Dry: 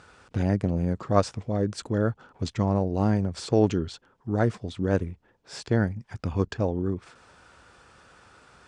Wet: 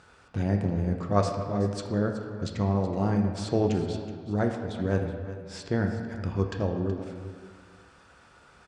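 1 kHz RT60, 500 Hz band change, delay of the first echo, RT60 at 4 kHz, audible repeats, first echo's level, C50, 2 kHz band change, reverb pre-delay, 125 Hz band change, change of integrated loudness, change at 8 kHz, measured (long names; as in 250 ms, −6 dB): 1.7 s, −2.0 dB, 374 ms, 1.2 s, 1, −14.0 dB, 5.0 dB, −1.5 dB, 3 ms, −1.5 dB, −2.0 dB, −3.0 dB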